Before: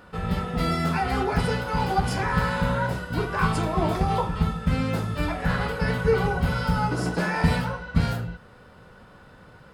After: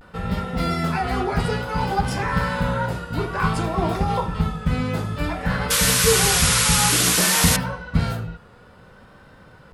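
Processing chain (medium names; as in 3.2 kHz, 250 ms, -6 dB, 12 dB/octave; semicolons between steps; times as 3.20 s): painted sound noise, 5.70–7.57 s, 970–12000 Hz -21 dBFS; vibrato 0.57 Hz 60 cents; trim +1.5 dB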